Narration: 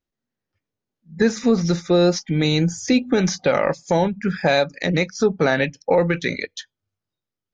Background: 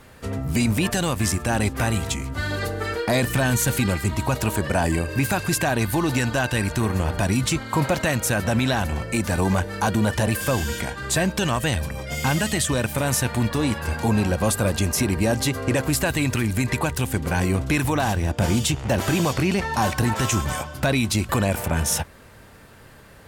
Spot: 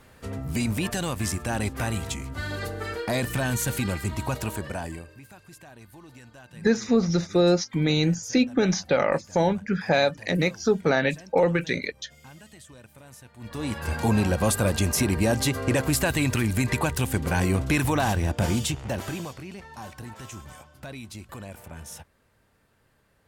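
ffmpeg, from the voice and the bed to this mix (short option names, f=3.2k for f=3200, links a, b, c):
-filter_complex "[0:a]adelay=5450,volume=-3.5dB[a];[1:a]volume=19dB,afade=t=out:st=4.31:d=0.88:silence=0.0944061,afade=t=in:st=13.38:d=0.61:silence=0.0595662,afade=t=out:st=18.2:d=1.19:silence=0.141254[b];[a][b]amix=inputs=2:normalize=0"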